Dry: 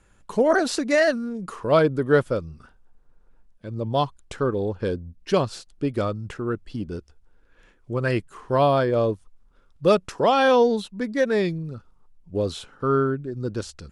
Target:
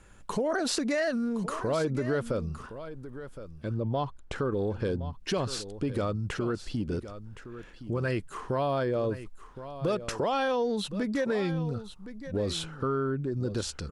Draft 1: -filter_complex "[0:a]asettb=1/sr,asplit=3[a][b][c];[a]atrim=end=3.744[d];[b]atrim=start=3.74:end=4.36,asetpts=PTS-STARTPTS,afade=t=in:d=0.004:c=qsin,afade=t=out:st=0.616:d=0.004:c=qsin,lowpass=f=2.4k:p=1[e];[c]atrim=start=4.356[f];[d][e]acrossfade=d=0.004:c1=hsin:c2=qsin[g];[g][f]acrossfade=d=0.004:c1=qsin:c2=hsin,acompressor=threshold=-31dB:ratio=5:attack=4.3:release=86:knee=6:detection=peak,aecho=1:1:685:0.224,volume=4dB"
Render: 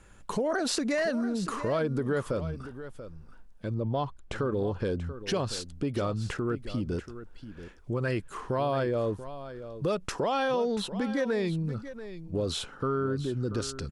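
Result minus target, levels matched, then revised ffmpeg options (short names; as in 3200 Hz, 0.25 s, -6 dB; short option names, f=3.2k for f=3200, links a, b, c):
echo 0.381 s early
-filter_complex "[0:a]asettb=1/sr,asplit=3[a][b][c];[a]atrim=end=3.744[d];[b]atrim=start=3.74:end=4.36,asetpts=PTS-STARTPTS,afade=t=in:d=0.004:c=qsin,afade=t=out:st=0.616:d=0.004:c=qsin,lowpass=f=2.4k:p=1[e];[c]atrim=start=4.356[f];[d][e]acrossfade=d=0.004:c1=hsin:c2=qsin[g];[g][f]acrossfade=d=0.004:c1=qsin:c2=hsin,acompressor=threshold=-31dB:ratio=5:attack=4.3:release=86:knee=6:detection=peak,aecho=1:1:1066:0.224,volume=4dB"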